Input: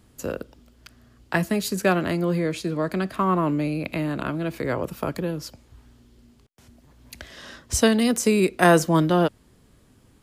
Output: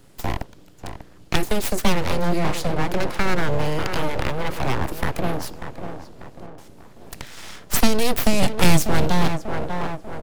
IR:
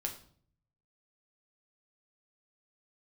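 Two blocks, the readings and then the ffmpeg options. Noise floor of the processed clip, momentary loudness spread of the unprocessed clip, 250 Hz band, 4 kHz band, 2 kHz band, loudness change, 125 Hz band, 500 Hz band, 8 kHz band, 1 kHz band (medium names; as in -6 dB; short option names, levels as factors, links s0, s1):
-46 dBFS, 14 LU, -1.5 dB, +5.0 dB, +1.0 dB, -0.5 dB, +2.5 dB, -1.5 dB, +1.5 dB, +1.0 dB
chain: -filter_complex "[0:a]asplit=2[s0][s1];[s1]adelay=592,lowpass=f=1300:p=1,volume=0.335,asplit=2[s2][s3];[s3]adelay=592,lowpass=f=1300:p=1,volume=0.47,asplit=2[s4][s5];[s5]adelay=592,lowpass=f=1300:p=1,volume=0.47,asplit=2[s6][s7];[s7]adelay=592,lowpass=f=1300:p=1,volume=0.47,asplit=2[s8][s9];[s9]adelay=592,lowpass=f=1300:p=1,volume=0.47[s10];[s0][s2][s4][s6][s8][s10]amix=inputs=6:normalize=0,aeval=exprs='abs(val(0))':c=same,acrossover=split=350|3000[s11][s12][s13];[s12]acompressor=threshold=0.0316:ratio=6[s14];[s11][s14][s13]amix=inputs=3:normalize=0,volume=2.11"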